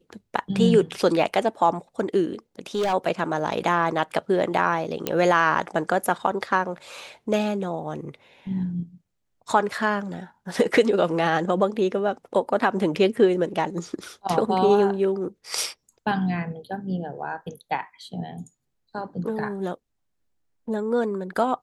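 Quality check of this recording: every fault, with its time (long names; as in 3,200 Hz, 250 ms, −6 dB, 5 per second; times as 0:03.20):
0:02.75–0:02.94: clipping −20 dBFS
0:05.07: click −8 dBFS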